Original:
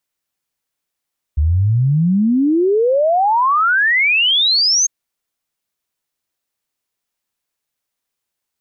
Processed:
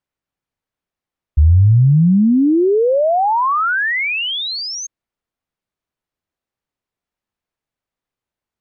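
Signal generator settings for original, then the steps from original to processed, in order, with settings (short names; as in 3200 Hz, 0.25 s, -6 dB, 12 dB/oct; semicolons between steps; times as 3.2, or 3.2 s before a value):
log sweep 71 Hz -> 6500 Hz 3.50 s -11 dBFS
LPF 1500 Hz 6 dB/oct; low shelf 180 Hz +6 dB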